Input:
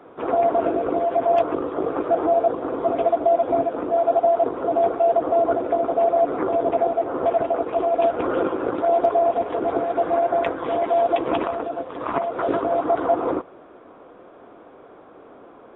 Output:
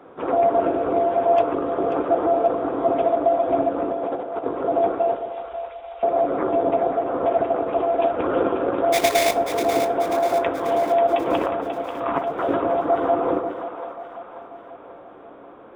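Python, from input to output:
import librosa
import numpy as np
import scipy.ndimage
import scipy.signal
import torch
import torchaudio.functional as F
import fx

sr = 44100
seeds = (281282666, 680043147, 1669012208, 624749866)

p1 = fx.over_compress(x, sr, threshold_db=-22.0, ratio=-0.5, at=(3.9, 4.43), fade=0.02)
p2 = fx.cheby2_bandstop(p1, sr, low_hz=180.0, high_hz=670.0, order=4, stop_db=70, at=(5.15, 6.03))
p3 = fx.sample_hold(p2, sr, seeds[0], rate_hz=2900.0, jitter_pct=20, at=(8.92, 9.33), fade=0.02)
p4 = p3 + fx.echo_split(p3, sr, split_hz=610.0, low_ms=135, high_ms=538, feedback_pct=52, wet_db=-8.5, dry=0)
y = fx.rev_fdn(p4, sr, rt60_s=0.83, lf_ratio=0.75, hf_ratio=0.5, size_ms=11.0, drr_db=10.5)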